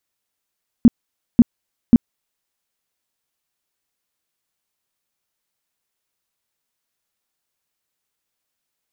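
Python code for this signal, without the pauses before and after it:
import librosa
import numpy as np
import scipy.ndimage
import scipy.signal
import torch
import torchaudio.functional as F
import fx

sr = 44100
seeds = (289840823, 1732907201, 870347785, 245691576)

y = fx.tone_burst(sr, hz=236.0, cycles=7, every_s=0.54, bursts=3, level_db=-3.5)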